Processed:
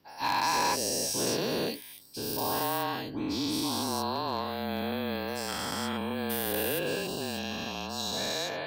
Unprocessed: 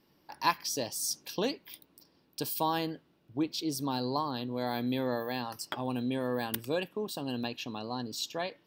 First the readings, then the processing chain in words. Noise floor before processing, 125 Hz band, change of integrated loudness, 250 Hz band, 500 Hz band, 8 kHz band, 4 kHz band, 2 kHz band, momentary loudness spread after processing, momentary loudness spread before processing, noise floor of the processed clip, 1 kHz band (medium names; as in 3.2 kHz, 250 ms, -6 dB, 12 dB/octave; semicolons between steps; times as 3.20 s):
-69 dBFS, +0.5 dB, +3.0 dB, +0.5 dB, +2.5 dB, +5.0 dB, +5.5 dB, +5.5 dB, 7 LU, 8 LU, -47 dBFS, +3.5 dB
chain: every event in the spectrogram widened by 480 ms; frequency shift -30 Hz; hard clipper -15.5 dBFS, distortion -22 dB; trim -6 dB